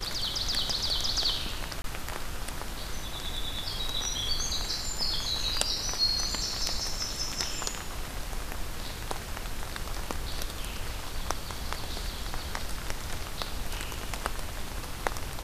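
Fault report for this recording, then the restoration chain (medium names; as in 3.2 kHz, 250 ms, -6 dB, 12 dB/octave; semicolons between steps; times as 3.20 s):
1.82–1.84 s: dropout 22 ms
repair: interpolate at 1.82 s, 22 ms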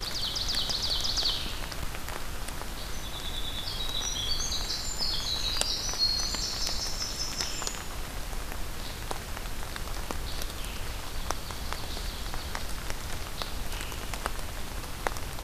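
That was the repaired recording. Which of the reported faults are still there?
nothing left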